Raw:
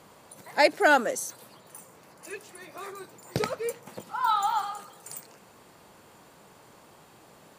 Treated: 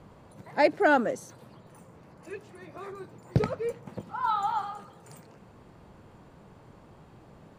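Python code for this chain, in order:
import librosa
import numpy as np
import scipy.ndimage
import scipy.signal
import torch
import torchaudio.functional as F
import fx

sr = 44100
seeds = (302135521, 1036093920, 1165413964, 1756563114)

y = fx.riaa(x, sr, side='playback')
y = F.gain(torch.from_numpy(y), -2.5).numpy()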